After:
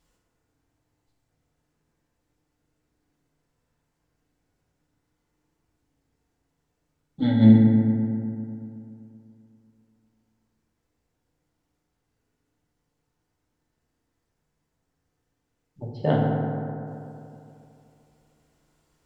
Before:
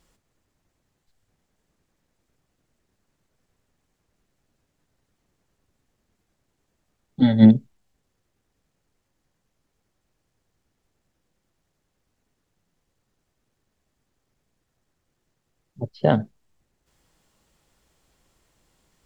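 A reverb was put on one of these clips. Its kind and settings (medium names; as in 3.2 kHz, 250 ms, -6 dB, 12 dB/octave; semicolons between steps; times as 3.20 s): FDN reverb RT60 2.8 s, high-frequency decay 0.35×, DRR -3.5 dB; trim -7.5 dB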